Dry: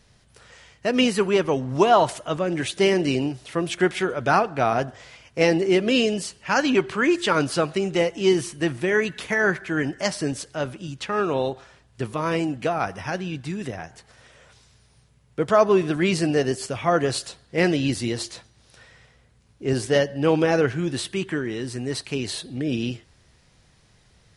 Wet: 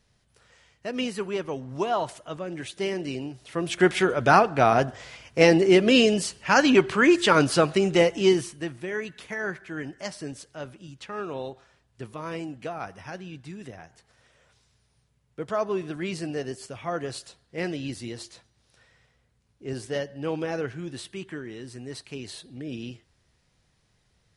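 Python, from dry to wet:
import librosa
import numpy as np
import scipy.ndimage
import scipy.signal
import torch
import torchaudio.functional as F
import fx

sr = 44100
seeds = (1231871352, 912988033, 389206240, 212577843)

y = fx.gain(x, sr, db=fx.line((3.28, -9.5), (3.9, 2.0), (8.17, 2.0), (8.71, -10.0)))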